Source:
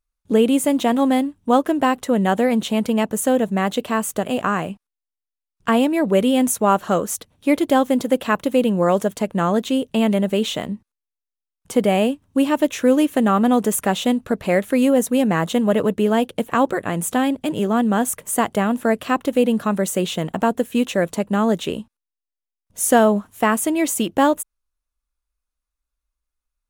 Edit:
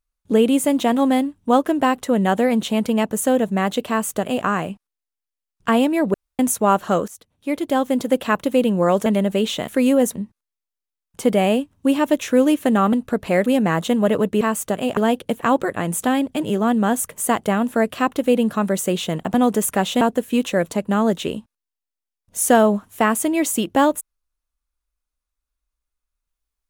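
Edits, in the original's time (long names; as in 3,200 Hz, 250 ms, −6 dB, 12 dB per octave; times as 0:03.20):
0:03.89–0:04.45: duplicate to 0:16.06
0:06.14–0:06.39: fill with room tone
0:07.08–0:08.14: fade in, from −16.5 dB
0:09.06–0:10.04: remove
0:13.44–0:14.11: move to 0:20.43
0:14.64–0:15.11: move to 0:10.66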